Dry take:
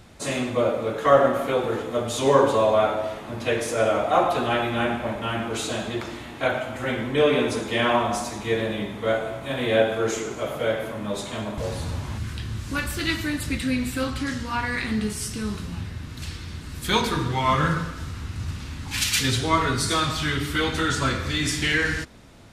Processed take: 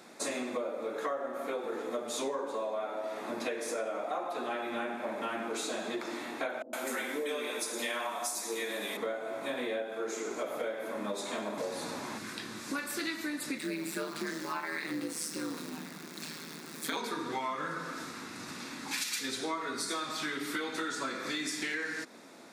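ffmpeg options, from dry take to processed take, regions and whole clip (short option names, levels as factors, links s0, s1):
-filter_complex "[0:a]asettb=1/sr,asplit=3[s0][s1][s2];[s0]atrim=end=6.624[s3];[s1]atrim=start=6.62:end=8.97,asetpts=PTS-STARTPTS,afade=t=in:d=0.004:c=qsin,afade=t=out:st=2.346:d=0.004:c=qsin,highpass=260,aemphasis=mode=production:type=75fm,acrossover=split=470[s4][s5];[s5]adelay=110[s6];[s4][s6]amix=inputs=2:normalize=0,atrim=end_sample=103635[s7];[s2]atrim=start=8.966[s8];[s3][s7]acrossfade=d=0.004:c1=hsin:c2=qsin[s9];[s9][s8]acrossfade=d=0.004:c1=qsin:c2=hsin,asettb=1/sr,asplit=3[s10][s11][s12];[s10]atrim=end=13.584[s13];[s11]atrim=start=13.58:end=16.97,asetpts=PTS-STARTPTS,afade=t=in:d=0.004:c=qsin,afade=t=out:st=3.386:d=0.004:c=qsin,acrusher=bits=8:dc=4:mix=0:aa=0.000001,aeval=exprs='val(0)*sin(2*PI*79*n/s)':c=same[s14];[s12]atrim=start=16.966[s15];[s13][s14]acrossfade=d=0.004:c1=hsin:c2=qsin[s16];[s16][s15]acrossfade=d=0.004:c1=qsin:c2=hsin,highpass=f=240:w=0.5412,highpass=f=240:w=1.3066,equalizer=f=3000:t=o:w=0.21:g=-10.5,acompressor=threshold=0.0251:ratio=12"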